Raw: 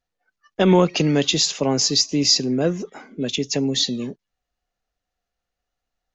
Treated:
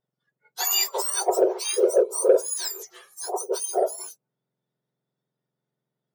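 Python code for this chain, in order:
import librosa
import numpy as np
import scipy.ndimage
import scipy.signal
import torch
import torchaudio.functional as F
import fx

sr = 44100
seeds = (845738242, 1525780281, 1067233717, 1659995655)

p1 = fx.octave_mirror(x, sr, pivot_hz=1600.0)
p2 = 10.0 ** (-9.5 / 20.0) * np.tanh(p1 / 10.0 ** (-9.5 / 20.0))
p3 = p1 + (p2 * 10.0 ** (-6.0 / 20.0))
y = p3 * 10.0 ** (-6.5 / 20.0)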